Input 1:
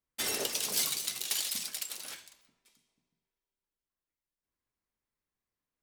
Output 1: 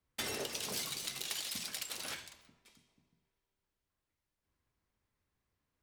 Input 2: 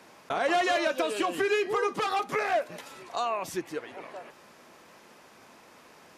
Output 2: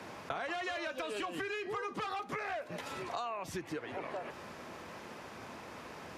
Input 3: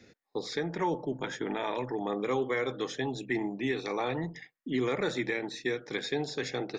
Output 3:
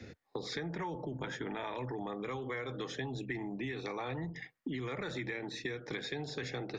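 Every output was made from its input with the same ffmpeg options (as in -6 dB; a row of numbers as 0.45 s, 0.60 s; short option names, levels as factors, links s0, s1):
-filter_complex "[0:a]equalizer=f=83:w=1:g=9,acrossover=split=140|940[s0][s1][s2];[s1]alimiter=level_in=2:limit=0.0631:level=0:latency=1,volume=0.501[s3];[s0][s3][s2]amix=inputs=3:normalize=0,highshelf=f=5400:g=-9,acompressor=threshold=0.00708:ratio=6,volume=2.11"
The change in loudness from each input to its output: -6.5 LU, -11.5 LU, -7.0 LU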